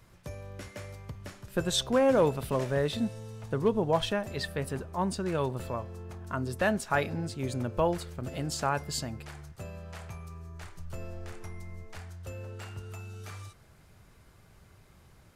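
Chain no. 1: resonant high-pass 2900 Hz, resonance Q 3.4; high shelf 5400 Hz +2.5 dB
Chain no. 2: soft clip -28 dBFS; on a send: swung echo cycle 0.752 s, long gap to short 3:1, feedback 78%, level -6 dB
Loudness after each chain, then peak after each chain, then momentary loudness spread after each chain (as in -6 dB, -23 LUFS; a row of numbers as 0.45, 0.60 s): -33.5, -34.0 LUFS; -7.5, -19.0 dBFS; 22, 13 LU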